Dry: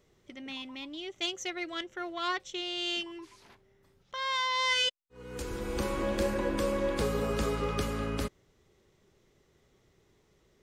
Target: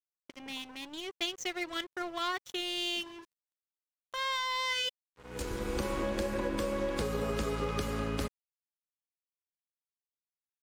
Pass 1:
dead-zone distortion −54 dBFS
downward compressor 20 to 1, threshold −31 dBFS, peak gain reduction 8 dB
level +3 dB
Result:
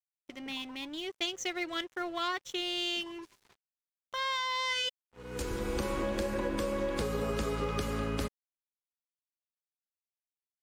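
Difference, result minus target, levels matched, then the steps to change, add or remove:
dead-zone distortion: distortion −7 dB
change: dead-zone distortion −46 dBFS

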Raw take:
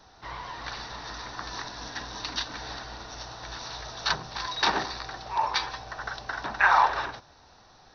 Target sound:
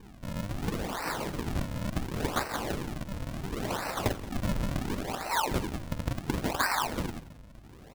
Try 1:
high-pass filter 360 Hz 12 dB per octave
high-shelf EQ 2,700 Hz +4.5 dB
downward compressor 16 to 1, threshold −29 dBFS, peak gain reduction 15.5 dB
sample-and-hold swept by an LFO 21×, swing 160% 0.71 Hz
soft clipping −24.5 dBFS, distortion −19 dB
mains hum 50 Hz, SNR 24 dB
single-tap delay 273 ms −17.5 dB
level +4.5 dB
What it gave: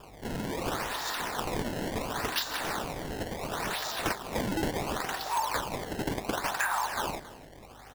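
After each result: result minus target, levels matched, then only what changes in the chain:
echo 97 ms late; sample-and-hold swept by an LFO: distortion −15 dB; soft clipping: distortion +8 dB
change: single-tap delay 176 ms −17.5 dB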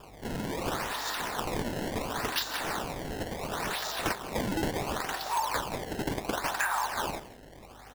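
sample-and-hold swept by an LFO: distortion −15 dB; soft clipping: distortion +8 dB
change: sample-and-hold swept by an LFO 64×, swing 160% 0.71 Hz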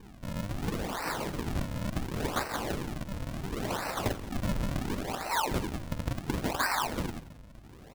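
soft clipping: distortion +9 dB
change: soft clipping −18 dBFS, distortion −27 dB

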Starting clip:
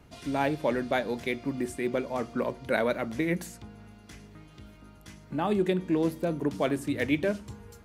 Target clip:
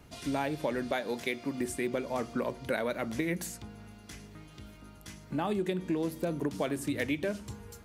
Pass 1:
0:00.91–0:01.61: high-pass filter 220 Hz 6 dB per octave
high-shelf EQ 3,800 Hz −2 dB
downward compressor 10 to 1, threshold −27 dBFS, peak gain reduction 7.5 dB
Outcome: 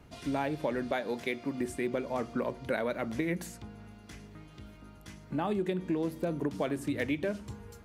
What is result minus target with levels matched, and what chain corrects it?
8,000 Hz band −6.0 dB
0:00.91–0:01.61: high-pass filter 220 Hz 6 dB per octave
high-shelf EQ 3,800 Hz +5.5 dB
downward compressor 10 to 1, threshold −27 dBFS, peak gain reduction 8 dB

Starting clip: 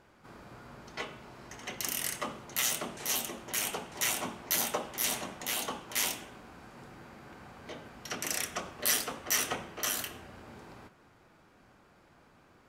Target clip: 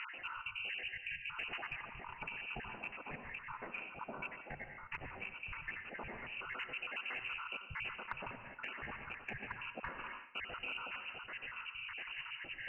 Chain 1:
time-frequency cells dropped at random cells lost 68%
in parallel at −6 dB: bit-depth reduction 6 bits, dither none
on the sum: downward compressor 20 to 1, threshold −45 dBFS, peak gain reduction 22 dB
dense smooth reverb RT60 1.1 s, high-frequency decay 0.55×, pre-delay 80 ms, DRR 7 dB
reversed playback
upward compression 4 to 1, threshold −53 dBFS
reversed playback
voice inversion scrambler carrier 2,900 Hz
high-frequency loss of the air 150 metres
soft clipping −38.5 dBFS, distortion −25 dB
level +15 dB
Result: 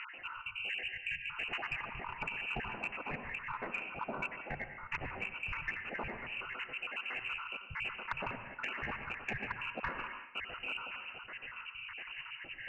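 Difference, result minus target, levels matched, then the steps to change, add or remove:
downward compressor: peak gain reduction −6.5 dB
change: downward compressor 20 to 1, threshold −52 dBFS, peak gain reduction 28.5 dB

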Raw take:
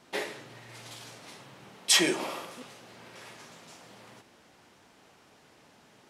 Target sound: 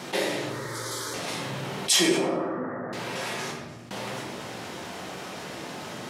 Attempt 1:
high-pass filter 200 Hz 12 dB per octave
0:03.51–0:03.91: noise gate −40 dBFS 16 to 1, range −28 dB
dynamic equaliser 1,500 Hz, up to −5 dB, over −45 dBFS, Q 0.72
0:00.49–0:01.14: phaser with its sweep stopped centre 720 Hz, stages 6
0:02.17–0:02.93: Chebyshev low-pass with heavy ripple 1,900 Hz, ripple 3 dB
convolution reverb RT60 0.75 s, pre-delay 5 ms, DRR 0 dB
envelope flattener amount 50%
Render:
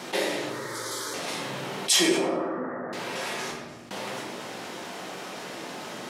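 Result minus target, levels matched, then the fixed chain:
125 Hz band −5.5 dB
high-pass filter 86 Hz 12 dB per octave
0:03.51–0:03.91: noise gate −40 dBFS 16 to 1, range −28 dB
dynamic equaliser 1,500 Hz, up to −5 dB, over −45 dBFS, Q 0.72
0:00.49–0:01.14: phaser with its sweep stopped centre 720 Hz, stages 6
0:02.17–0:02.93: Chebyshev low-pass with heavy ripple 1,900 Hz, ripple 3 dB
convolution reverb RT60 0.75 s, pre-delay 5 ms, DRR 0 dB
envelope flattener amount 50%

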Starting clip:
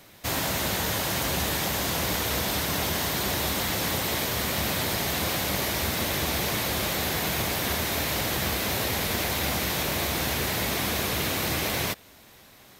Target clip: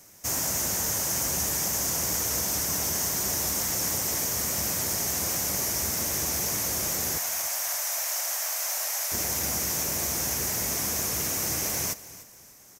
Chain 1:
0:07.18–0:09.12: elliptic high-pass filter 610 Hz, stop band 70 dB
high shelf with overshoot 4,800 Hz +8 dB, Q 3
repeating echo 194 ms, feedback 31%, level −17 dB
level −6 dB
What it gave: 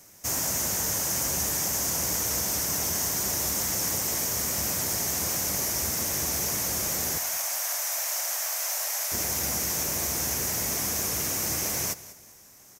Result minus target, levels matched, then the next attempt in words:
echo 103 ms early
0:07.18–0:09.12: elliptic high-pass filter 610 Hz, stop band 70 dB
high shelf with overshoot 4,800 Hz +8 dB, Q 3
repeating echo 297 ms, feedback 31%, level −17 dB
level −6 dB

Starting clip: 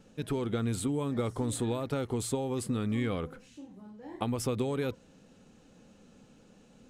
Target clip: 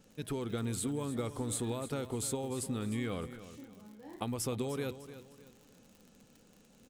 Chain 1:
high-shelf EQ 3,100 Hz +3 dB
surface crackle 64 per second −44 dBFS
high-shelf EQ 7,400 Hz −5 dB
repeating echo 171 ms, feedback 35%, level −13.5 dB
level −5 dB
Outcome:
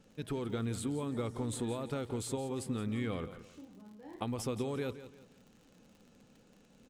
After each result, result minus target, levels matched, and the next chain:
echo 131 ms early; 8,000 Hz band −5.5 dB
high-shelf EQ 3,100 Hz +3 dB
surface crackle 64 per second −44 dBFS
high-shelf EQ 7,400 Hz −5 dB
repeating echo 302 ms, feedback 35%, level −13.5 dB
level −5 dB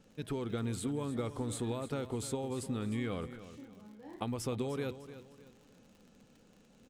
8,000 Hz band −5.5 dB
high-shelf EQ 3,100 Hz +3 dB
surface crackle 64 per second −44 dBFS
high-shelf EQ 7,400 Hz +6 dB
repeating echo 302 ms, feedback 35%, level −13.5 dB
level −5 dB

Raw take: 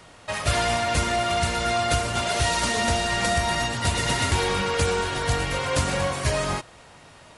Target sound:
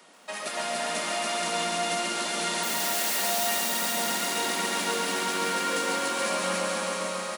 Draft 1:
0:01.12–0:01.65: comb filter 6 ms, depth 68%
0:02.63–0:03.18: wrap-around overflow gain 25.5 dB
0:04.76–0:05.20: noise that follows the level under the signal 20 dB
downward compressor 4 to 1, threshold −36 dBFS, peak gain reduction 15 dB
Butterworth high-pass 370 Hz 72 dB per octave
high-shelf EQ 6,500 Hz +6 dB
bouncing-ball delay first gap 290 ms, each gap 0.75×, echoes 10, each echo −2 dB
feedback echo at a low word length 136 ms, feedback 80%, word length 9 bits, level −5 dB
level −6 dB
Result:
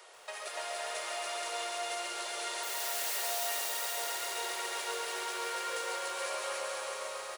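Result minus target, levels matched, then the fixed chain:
250 Hz band −12.0 dB; downward compressor: peak gain reduction +8.5 dB
0:01.12–0:01.65: comb filter 6 ms, depth 68%
0:02.63–0:03.18: wrap-around overflow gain 25.5 dB
0:04.76–0:05.20: noise that follows the level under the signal 20 dB
downward compressor 4 to 1, threshold −25 dBFS, peak gain reduction 7 dB
Butterworth high-pass 180 Hz 72 dB per octave
high-shelf EQ 6,500 Hz +6 dB
bouncing-ball delay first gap 290 ms, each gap 0.75×, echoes 10, each echo −2 dB
feedback echo at a low word length 136 ms, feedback 80%, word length 9 bits, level −5 dB
level −6 dB

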